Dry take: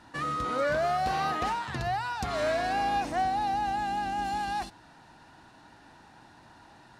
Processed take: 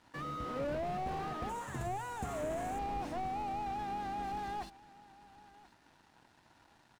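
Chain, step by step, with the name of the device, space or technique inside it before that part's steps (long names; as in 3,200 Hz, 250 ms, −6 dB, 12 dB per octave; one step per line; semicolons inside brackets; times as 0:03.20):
early transistor amplifier (dead-zone distortion −56.5 dBFS; slew-rate limiting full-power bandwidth 20 Hz)
0:01.49–0:02.79: high shelf with overshoot 5,900 Hz +7.5 dB, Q 3
single-tap delay 1,034 ms −20.5 dB
level −5 dB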